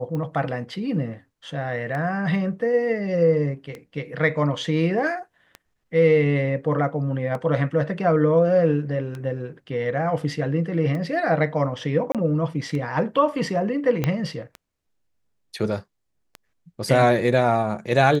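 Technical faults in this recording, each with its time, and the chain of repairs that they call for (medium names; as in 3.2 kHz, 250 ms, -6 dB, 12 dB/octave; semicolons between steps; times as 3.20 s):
tick 33 1/3 rpm -20 dBFS
12.12–12.15 s: dropout 27 ms
14.04 s: pop -9 dBFS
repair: de-click; interpolate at 12.12 s, 27 ms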